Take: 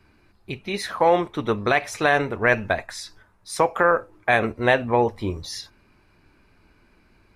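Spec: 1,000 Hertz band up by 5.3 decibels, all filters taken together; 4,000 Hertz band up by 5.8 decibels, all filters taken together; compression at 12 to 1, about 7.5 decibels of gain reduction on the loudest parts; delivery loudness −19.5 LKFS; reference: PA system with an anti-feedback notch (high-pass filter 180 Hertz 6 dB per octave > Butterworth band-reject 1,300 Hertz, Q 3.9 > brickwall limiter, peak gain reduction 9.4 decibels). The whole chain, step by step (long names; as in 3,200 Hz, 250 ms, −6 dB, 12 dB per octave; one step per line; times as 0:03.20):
parametric band 1,000 Hz +8 dB
parametric band 4,000 Hz +6.5 dB
downward compressor 12 to 1, threshold −16 dBFS
high-pass filter 180 Hz 6 dB per octave
Butterworth band-reject 1,300 Hz, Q 3.9
level +8.5 dB
brickwall limiter −7 dBFS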